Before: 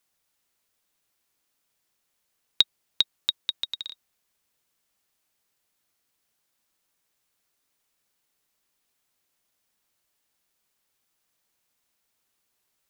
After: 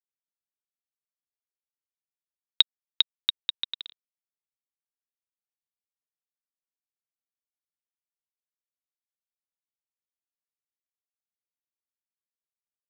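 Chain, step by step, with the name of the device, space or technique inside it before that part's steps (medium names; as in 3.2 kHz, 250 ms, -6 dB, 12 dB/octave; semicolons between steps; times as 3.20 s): blown loudspeaker (crossover distortion -33.5 dBFS; cabinet simulation 180–3900 Hz, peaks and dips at 460 Hz -7 dB, 670 Hz -7 dB, 3.2 kHz +5 dB); trim +1.5 dB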